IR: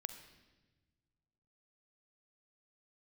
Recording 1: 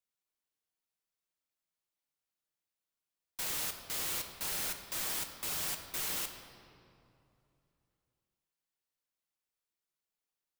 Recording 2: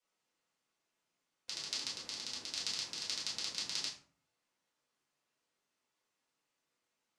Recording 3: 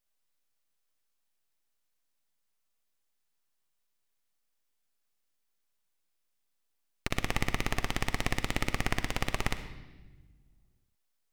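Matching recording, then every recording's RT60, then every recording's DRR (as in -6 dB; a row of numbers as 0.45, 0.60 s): 3; 2.7, 0.50, 1.3 s; 4.5, -8.0, 9.5 dB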